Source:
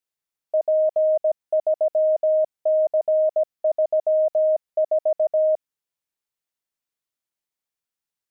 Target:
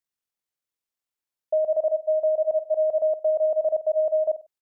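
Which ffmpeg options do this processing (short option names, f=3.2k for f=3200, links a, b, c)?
-af "areverse,aecho=1:1:92|184|276:0.237|0.0783|0.0258,atempo=1.8,volume=-1.5dB"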